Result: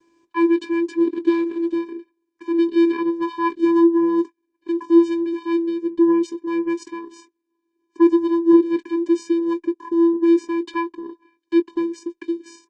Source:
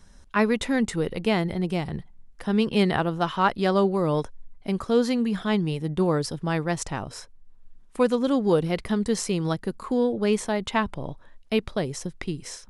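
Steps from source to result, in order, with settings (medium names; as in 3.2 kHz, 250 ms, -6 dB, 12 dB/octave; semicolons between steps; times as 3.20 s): 8.17–9.62 s: treble shelf 6.2 kHz -3 dB; vocoder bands 8, square 336 Hz; doubling 20 ms -13.5 dB; trim +6.5 dB; Opus 20 kbps 48 kHz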